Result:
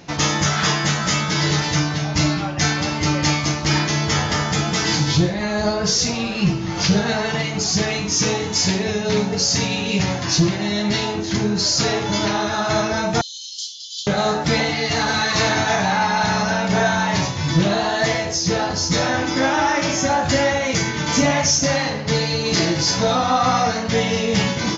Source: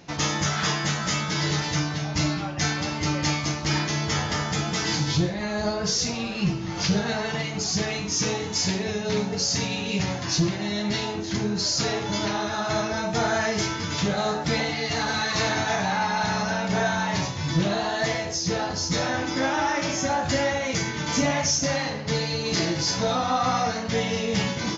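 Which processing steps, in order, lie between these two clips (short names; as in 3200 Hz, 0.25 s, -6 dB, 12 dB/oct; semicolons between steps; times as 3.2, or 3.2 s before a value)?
13.21–14.07 rippled Chebyshev high-pass 3000 Hz, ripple 6 dB; gain +6 dB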